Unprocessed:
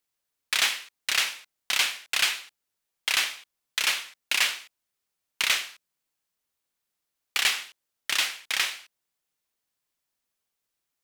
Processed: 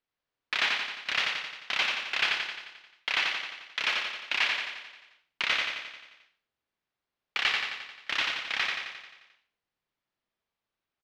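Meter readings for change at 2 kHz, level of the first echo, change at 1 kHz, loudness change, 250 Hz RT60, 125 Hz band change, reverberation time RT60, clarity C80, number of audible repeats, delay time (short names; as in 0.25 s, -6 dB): -0.5 dB, -3.5 dB, +1.0 dB, -3.0 dB, none, n/a, none, none, 7, 88 ms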